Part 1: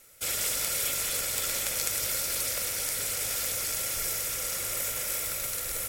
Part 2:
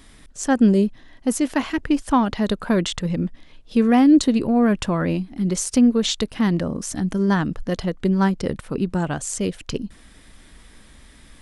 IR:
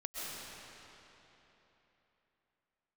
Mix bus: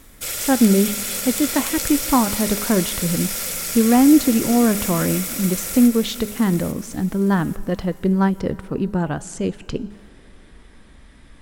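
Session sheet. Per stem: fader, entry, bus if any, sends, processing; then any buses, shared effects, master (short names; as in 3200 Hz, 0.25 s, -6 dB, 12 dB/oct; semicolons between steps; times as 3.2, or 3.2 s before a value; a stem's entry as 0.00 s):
+1.5 dB, 0.00 s, send -8 dB, echo send -5.5 dB, dry
+1.0 dB, 0.00 s, send -22 dB, no echo send, high shelf 3200 Hz -10 dB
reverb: on, RT60 3.5 s, pre-delay 90 ms
echo: feedback echo 0.843 s, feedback 33%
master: de-hum 206.8 Hz, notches 39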